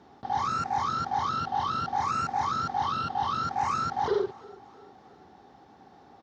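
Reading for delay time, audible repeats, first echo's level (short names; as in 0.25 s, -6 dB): 0.333 s, 3, -22.5 dB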